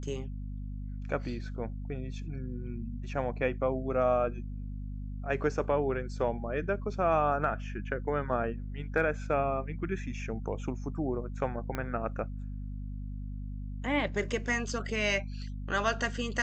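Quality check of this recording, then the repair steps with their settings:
hum 50 Hz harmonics 5 -38 dBFS
11.75 s: pop -19 dBFS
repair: de-click; de-hum 50 Hz, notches 5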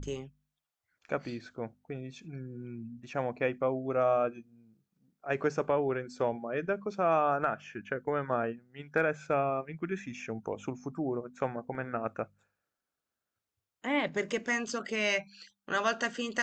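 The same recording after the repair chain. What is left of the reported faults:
11.75 s: pop

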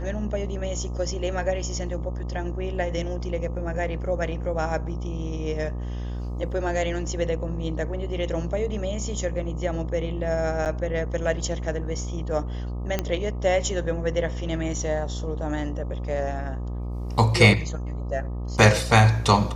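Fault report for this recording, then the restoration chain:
buzz 60 Hz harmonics 21 -30 dBFS
10.65–10.66 s: dropout 8.4 ms
12.99 s: pop -10 dBFS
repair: de-click; de-hum 60 Hz, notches 21; interpolate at 10.65 s, 8.4 ms

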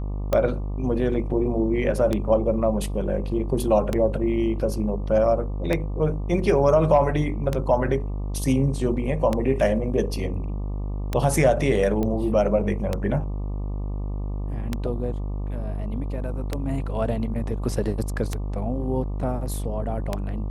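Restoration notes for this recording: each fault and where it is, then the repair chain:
buzz 50 Hz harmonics 24 -28 dBFS
tick 33 1/3 rpm -10 dBFS
12.03 s: pop -15 dBFS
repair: de-click; de-hum 50 Hz, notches 24

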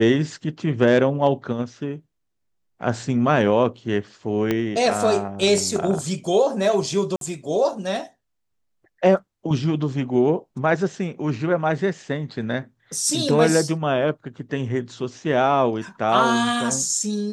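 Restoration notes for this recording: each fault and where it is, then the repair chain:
4.51 s: pop -9 dBFS
7.16–7.21 s: dropout 52 ms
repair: de-click; interpolate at 7.16 s, 52 ms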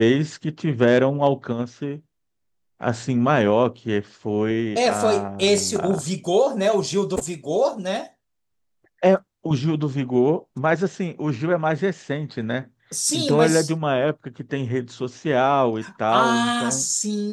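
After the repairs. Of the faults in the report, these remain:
4.51 s: pop

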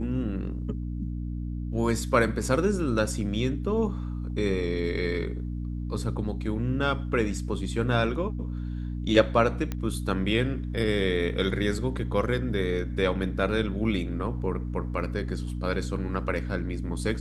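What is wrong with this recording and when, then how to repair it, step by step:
hum 60 Hz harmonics 5 -32 dBFS
9.72 s: pop -17 dBFS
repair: de-click; de-hum 60 Hz, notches 5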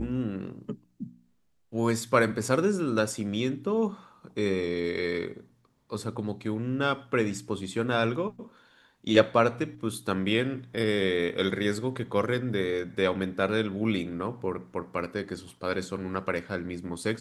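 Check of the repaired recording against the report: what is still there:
nothing left

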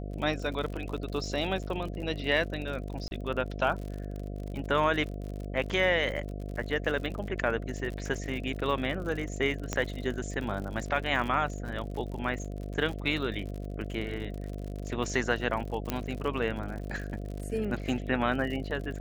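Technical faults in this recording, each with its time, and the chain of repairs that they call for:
buzz 50 Hz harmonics 14 -37 dBFS
crackle 59 per s -36 dBFS
3.08–3.11 s: dropout 31 ms
9.73 s: pop -15 dBFS
15.90 s: pop -14 dBFS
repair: de-click; de-hum 50 Hz, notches 14; interpolate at 3.08 s, 31 ms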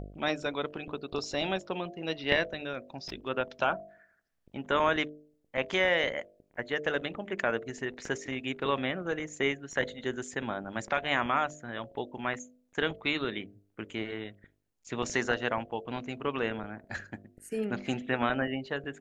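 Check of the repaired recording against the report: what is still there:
9.73 s: pop

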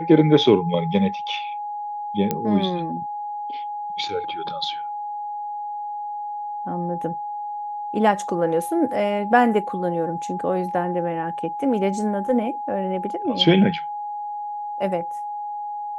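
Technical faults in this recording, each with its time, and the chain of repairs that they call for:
whine 830 Hz -27 dBFS
2.31 s: pop -8 dBFS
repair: de-click; band-stop 830 Hz, Q 30

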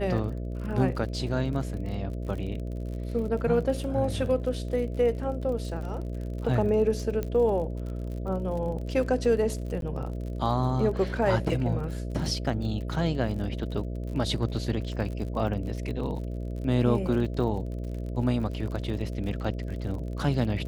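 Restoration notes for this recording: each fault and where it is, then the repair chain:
buzz 60 Hz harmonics 11 -33 dBFS
crackle 46 per s -36 dBFS
7.23 s: pop -18 dBFS
9.81–9.82 s: dropout 12 ms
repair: de-click; de-hum 60 Hz, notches 11; interpolate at 9.81 s, 12 ms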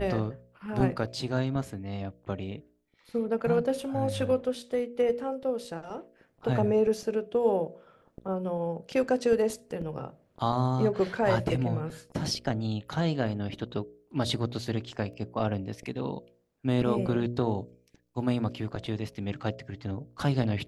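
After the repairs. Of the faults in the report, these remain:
nothing left

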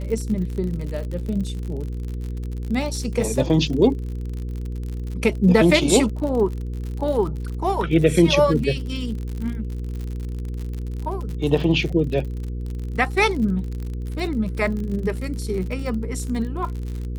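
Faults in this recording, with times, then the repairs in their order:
crackle 56 per s -29 dBFS
hum 60 Hz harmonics 8 -28 dBFS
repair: de-click; de-hum 60 Hz, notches 8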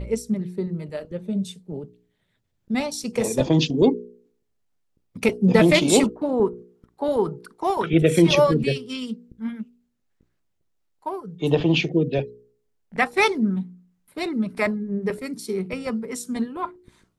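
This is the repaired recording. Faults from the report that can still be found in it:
nothing left

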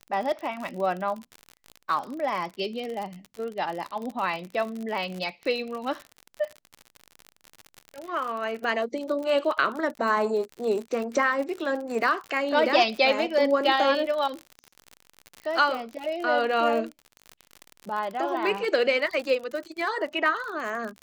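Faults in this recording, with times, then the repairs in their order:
crackle 54 per s -31 dBFS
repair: de-click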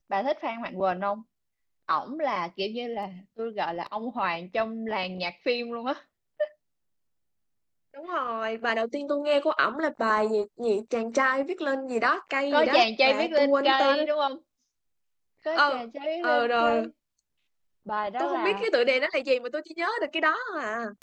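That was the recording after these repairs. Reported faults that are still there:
nothing left

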